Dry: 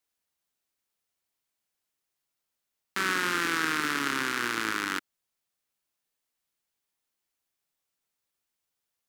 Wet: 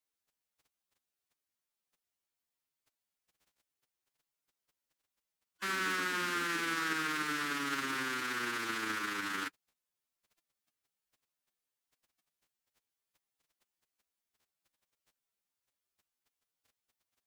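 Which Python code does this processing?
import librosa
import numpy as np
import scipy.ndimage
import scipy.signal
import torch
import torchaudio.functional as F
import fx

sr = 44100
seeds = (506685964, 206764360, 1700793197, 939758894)

y = fx.dmg_crackle(x, sr, seeds[0], per_s=10.0, level_db=-46.0)
y = fx.stretch_vocoder(y, sr, factor=1.9)
y = y * 10.0 ** (-6.0 / 20.0)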